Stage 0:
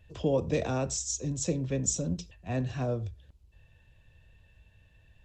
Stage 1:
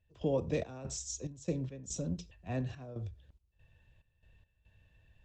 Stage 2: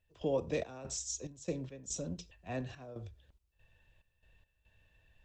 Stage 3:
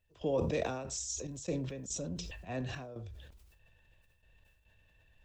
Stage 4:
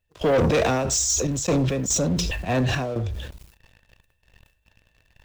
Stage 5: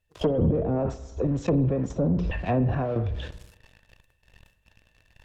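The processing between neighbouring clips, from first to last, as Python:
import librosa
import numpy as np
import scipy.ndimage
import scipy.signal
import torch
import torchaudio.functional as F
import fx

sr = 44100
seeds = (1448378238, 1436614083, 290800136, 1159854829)

y1 = fx.high_shelf(x, sr, hz=6500.0, db=-6.5)
y1 = fx.step_gate(y1, sr, bpm=71, pattern='.xx.xx.x.xxxx', floor_db=-12.0, edge_ms=4.5)
y1 = F.gain(torch.from_numpy(y1), -4.5).numpy()
y2 = fx.peak_eq(y1, sr, hz=110.0, db=-8.0, octaves=2.8)
y2 = F.gain(torch.from_numpy(y2), 1.5).numpy()
y3 = fx.sustainer(y2, sr, db_per_s=39.0)
y4 = fx.leveller(y3, sr, passes=3)
y4 = F.gain(torch.from_numpy(y4), 7.0).numpy()
y5 = fx.env_lowpass_down(y4, sr, base_hz=350.0, full_db=-17.5)
y5 = fx.rev_spring(y5, sr, rt60_s=1.1, pass_ms=(49,), chirp_ms=40, drr_db=15.5)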